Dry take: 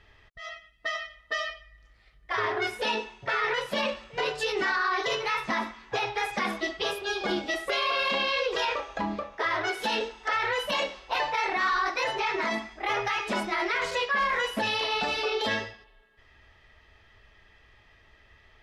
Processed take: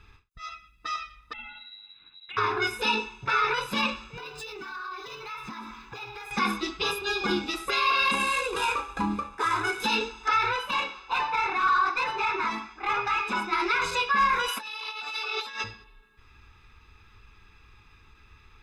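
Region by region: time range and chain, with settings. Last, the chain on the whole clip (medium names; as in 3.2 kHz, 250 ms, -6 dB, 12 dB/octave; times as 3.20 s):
1.33–2.37 s: frequency inversion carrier 3.9 kHz + compression 10:1, threshold -39 dBFS
4.17–6.31 s: median filter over 3 samples + compression, threshold -39 dBFS
8.11–9.80 s: median filter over 9 samples + low-pass 11 kHz 24 dB/octave
10.56–13.53 s: bass shelf 350 Hz -6 dB + overdrive pedal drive 8 dB, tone 1.6 kHz, clips at -18 dBFS
14.48–15.64 s: high-pass 720 Hz + compressor with a negative ratio -35 dBFS, ratio -0.5
whole clip: treble shelf 8 kHz +4 dB; comb 0.8 ms, depth 95%; endings held to a fixed fall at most 230 dB/s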